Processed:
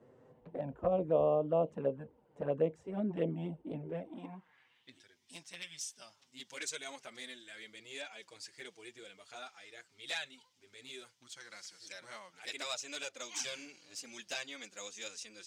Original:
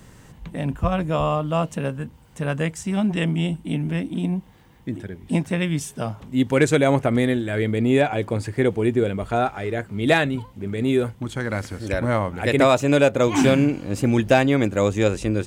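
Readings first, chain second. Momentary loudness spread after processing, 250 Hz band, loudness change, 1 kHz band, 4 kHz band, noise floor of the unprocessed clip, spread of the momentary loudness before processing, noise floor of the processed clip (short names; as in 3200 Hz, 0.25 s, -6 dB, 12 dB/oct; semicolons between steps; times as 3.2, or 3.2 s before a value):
18 LU, -23.0 dB, -17.0 dB, -19.0 dB, -11.0 dB, -49 dBFS, 12 LU, -71 dBFS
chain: band-pass sweep 490 Hz -> 5400 Hz, 3.91–5.06; envelope flanger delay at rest 8.9 ms, full sweep at -26 dBFS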